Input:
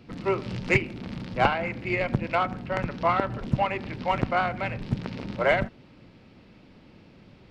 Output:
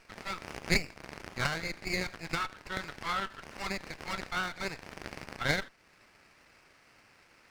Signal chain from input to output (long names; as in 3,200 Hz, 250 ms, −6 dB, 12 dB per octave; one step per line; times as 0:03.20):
inverse Chebyshev high-pass filter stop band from 430 Hz, stop band 60 dB
in parallel at −1 dB: downward compressor, threshold −47 dBFS, peak gain reduction 24.5 dB
on the sum: windowed peak hold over 9 samples